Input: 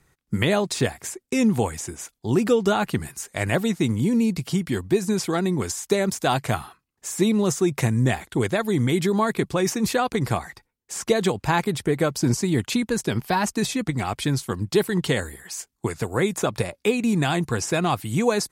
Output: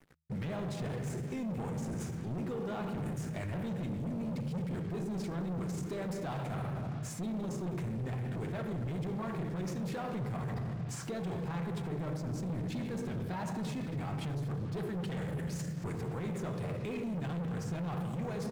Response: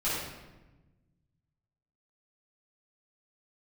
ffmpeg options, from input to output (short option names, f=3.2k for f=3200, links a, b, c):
-filter_complex "[0:a]asplit=2[a][b];[1:a]atrim=start_sample=2205[c];[b][c]afir=irnorm=-1:irlink=0,volume=-12.5dB[d];[a][d]amix=inputs=2:normalize=0,atempo=1,areverse,acompressor=threshold=-27dB:ratio=16,areverse,equalizer=f=160:w=3.1:g=12.5,asplit=2[e][f];[f]adelay=230,highpass=300,lowpass=3.4k,asoftclip=type=hard:threshold=-22dB,volume=-14dB[g];[e][g]amix=inputs=2:normalize=0,asoftclip=type=tanh:threshold=-30dB,acrusher=bits=7:mix=0:aa=0.5,asplit=2[h][i];[i]asetrate=37084,aresample=44100,atempo=1.18921,volume=-10dB[j];[h][j]amix=inputs=2:normalize=0,highshelf=f=3.5k:g=-11,alimiter=level_in=11.5dB:limit=-24dB:level=0:latency=1:release=48,volume=-11.5dB,bandreject=f=78.97:t=h:w=4,bandreject=f=157.94:t=h:w=4,volume=3.5dB"